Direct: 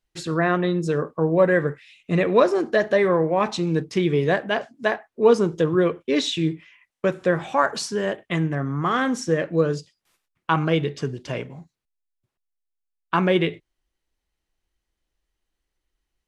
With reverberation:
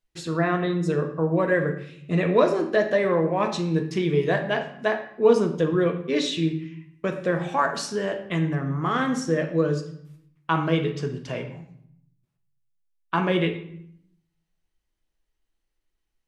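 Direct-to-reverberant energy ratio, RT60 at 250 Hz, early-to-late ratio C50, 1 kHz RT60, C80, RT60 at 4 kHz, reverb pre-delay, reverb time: 4.5 dB, 0.95 s, 9.5 dB, 0.65 s, 12.0 dB, 0.55 s, 3 ms, 0.70 s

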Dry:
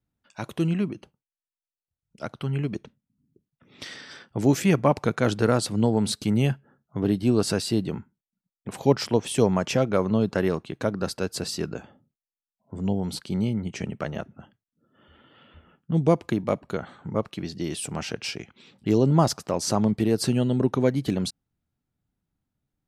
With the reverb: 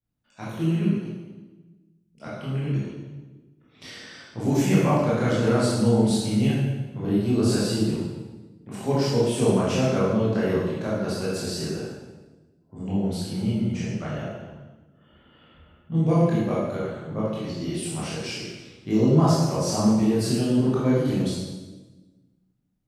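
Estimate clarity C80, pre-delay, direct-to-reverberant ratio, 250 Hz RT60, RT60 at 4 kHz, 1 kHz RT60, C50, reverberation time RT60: 1.5 dB, 16 ms, -8.5 dB, 1.7 s, 1.0 s, 1.1 s, -1.5 dB, 1.2 s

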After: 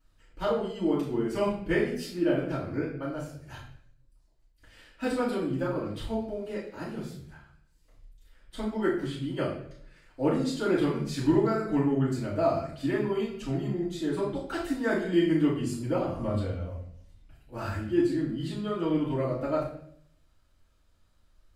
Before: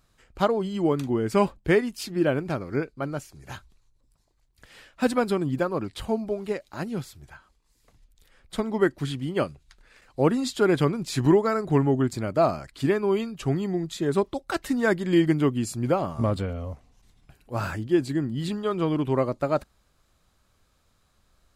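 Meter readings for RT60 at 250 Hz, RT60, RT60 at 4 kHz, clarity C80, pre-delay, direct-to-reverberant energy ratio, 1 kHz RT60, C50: 0.80 s, 0.65 s, 0.55 s, 8.0 dB, 3 ms, -11.5 dB, 0.55 s, 4.5 dB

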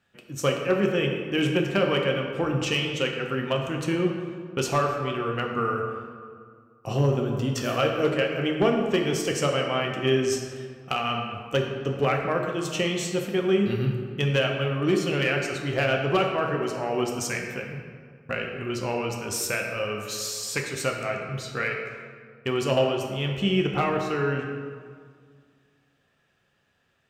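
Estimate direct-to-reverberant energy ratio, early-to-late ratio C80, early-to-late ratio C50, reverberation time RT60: 1.0 dB, 5.0 dB, 4.0 dB, 2.0 s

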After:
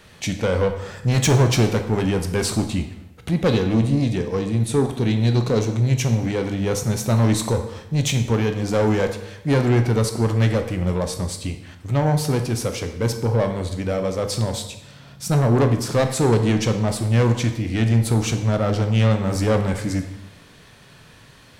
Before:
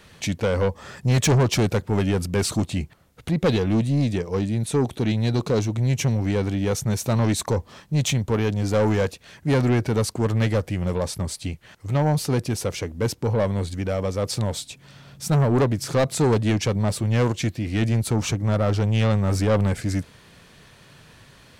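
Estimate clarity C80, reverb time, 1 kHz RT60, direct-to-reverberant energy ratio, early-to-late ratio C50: 11.5 dB, 0.95 s, 0.90 s, 6.0 dB, 9.0 dB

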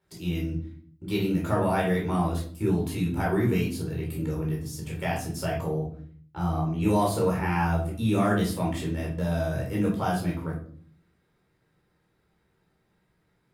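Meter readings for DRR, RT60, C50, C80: -4.0 dB, 0.50 s, 5.5 dB, 11.0 dB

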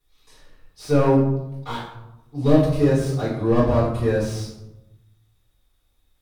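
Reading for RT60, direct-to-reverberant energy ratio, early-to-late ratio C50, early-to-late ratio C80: 0.95 s, -10.0 dB, 3.0 dB, 6.0 dB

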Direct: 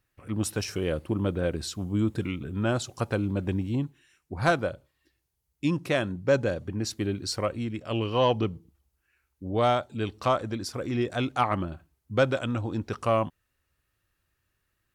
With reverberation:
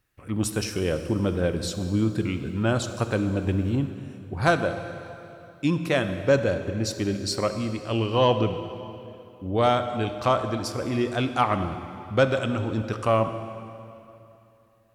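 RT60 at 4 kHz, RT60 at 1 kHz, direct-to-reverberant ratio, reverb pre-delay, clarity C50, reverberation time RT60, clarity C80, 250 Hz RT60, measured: 2.5 s, 2.8 s, 8.5 dB, 21 ms, 9.0 dB, 2.8 s, 10.0 dB, 3.1 s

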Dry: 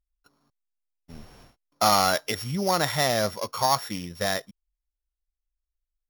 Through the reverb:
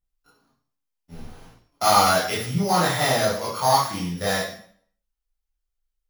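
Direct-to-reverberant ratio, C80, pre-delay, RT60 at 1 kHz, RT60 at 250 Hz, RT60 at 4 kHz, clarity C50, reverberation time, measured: -9.0 dB, 8.5 dB, 7 ms, 0.55 s, 0.50 s, 0.50 s, 2.5 dB, 0.55 s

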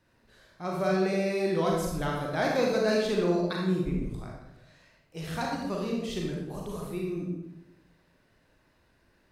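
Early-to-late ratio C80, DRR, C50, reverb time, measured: 4.0 dB, -2.0 dB, 1.0 dB, 0.95 s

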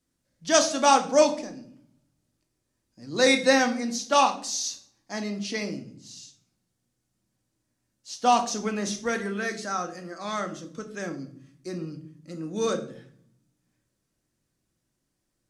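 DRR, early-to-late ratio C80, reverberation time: 5.0 dB, 16.0 dB, 0.55 s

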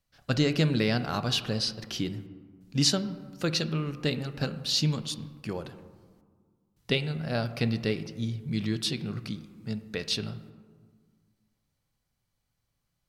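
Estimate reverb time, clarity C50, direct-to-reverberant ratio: 1.8 s, 13.0 dB, 10.5 dB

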